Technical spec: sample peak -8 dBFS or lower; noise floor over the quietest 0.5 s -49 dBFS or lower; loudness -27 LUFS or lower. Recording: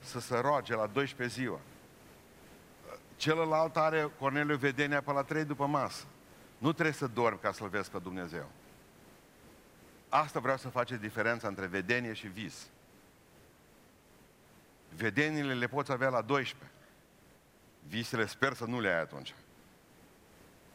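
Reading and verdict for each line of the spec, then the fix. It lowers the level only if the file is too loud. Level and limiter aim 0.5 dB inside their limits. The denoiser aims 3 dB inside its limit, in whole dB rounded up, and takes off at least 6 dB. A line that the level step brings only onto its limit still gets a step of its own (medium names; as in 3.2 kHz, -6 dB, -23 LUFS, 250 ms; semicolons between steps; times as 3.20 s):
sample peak -12.0 dBFS: pass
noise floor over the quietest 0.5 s -62 dBFS: pass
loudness -33.5 LUFS: pass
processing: none needed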